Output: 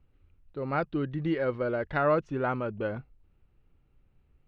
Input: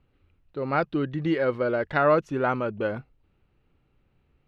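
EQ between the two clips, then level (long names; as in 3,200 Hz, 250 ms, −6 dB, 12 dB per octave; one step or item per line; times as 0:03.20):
high-frequency loss of the air 88 metres
low-shelf EQ 77 Hz +11 dB
−4.5 dB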